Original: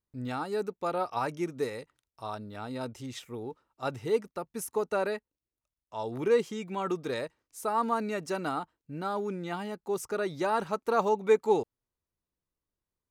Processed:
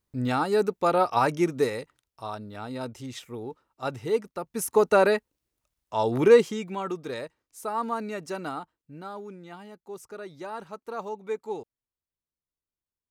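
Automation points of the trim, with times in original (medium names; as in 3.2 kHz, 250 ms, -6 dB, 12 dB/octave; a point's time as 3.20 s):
1.47 s +8.5 dB
2.31 s +2 dB
4.36 s +2 dB
4.81 s +10 dB
6.25 s +10 dB
6.92 s -1 dB
8.43 s -1 dB
9.42 s -8.5 dB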